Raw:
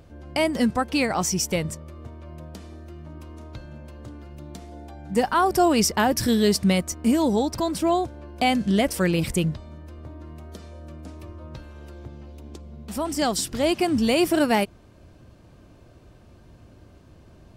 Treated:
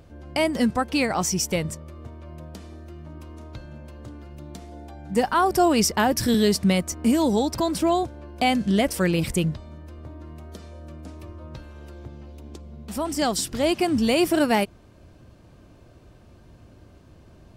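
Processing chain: 6.34–8.03 three-band squash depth 40%

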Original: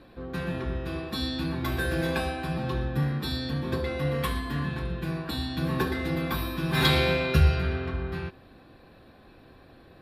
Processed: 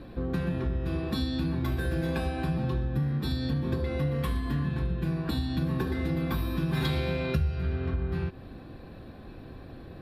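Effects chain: low shelf 390 Hz +10 dB; compressor 5:1, threshold -28 dBFS, peak gain reduction 19.5 dB; gain +1.5 dB

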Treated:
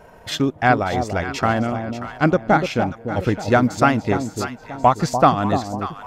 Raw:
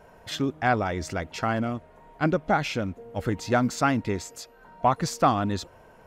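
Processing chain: transient shaper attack +1 dB, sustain -8 dB; echo with dull and thin repeats by turns 0.293 s, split 880 Hz, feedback 59%, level -6.5 dB; gain +6.5 dB

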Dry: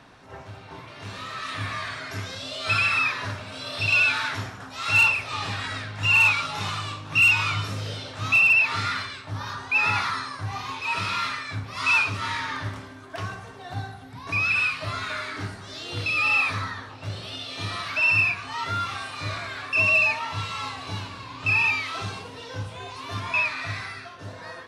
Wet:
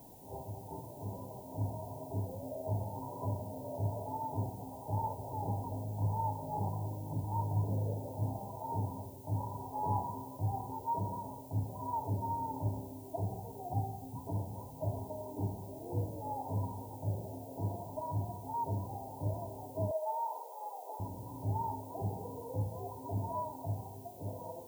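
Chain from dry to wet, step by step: brick-wall FIR low-pass 1000 Hz; added noise violet -57 dBFS; 19.91–21 steep high-pass 460 Hz 36 dB/oct; gain -2 dB

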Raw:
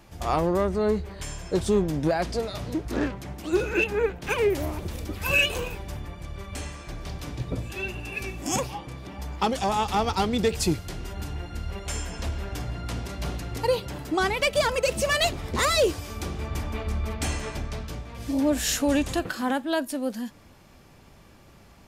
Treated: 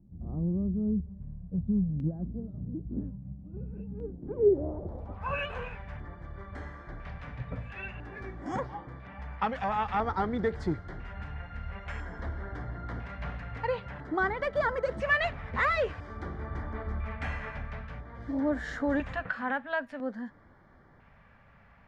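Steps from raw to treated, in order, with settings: low-pass sweep 200 Hz -> 1800 Hz, 3.94–5.65; 3.09–3.57 notch comb 220 Hz; LFO notch square 0.5 Hz 340–2600 Hz; gain -6 dB

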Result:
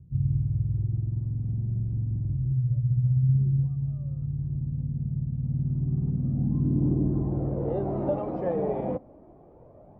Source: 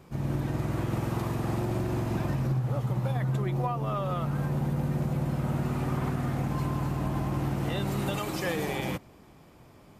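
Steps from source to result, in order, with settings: phaser 0.29 Hz, delay 4.9 ms, feedback 37%; low-pass sweep 110 Hz -> 620 Hz, 5.36–7.89

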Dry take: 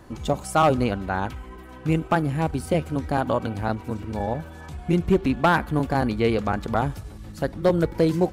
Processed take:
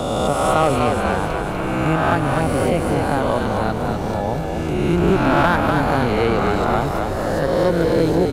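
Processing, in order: spectral swells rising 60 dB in 1.67 s; frequency-shifting echo 0.246 s, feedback 59%, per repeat -45 Hz, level -5 dB; three-band squash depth 40%

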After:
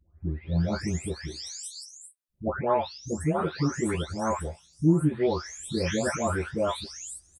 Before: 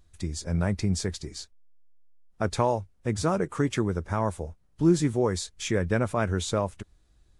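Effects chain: spectral delay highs late, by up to 0.675 s; HPF 44 Hz; doubler 13 ms -4 dB

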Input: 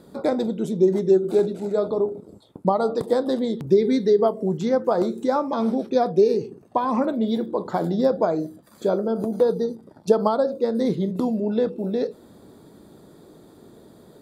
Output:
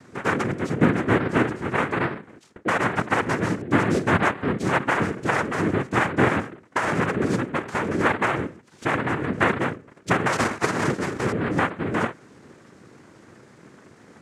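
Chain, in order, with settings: 10.32–11.32 cycle switcher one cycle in 2, inverted; soft clip -13 dBFS, distortion -16 dB; noise vocoder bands 3

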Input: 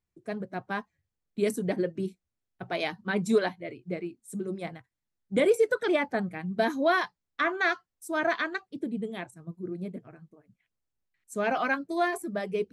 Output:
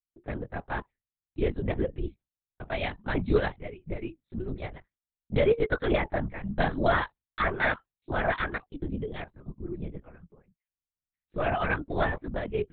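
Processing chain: gate with hold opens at -48 dBFS; LPC vocoder at 8 kHz whisper

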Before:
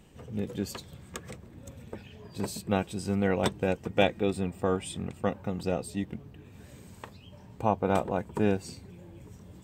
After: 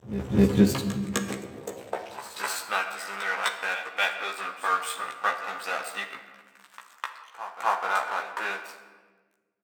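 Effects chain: in parallel at +2.5 dB: limiter -19 dBFS, peak gain reduction 10 dB; on the sum: vocal rider within 4 dB 0.5 s; crossover distortion -33 dBFS; vibrato 6.7 Hz 16 cents; pre-echo 0.255 s -12.5 dB; high-pass sweep 68 Hz -> 1300 Hz, 0.36–2.37; doubler 15 ms -2.5 dB; on a send at -6.5 dB: reverb RT60 1.4 s, pre-delay 14 ms

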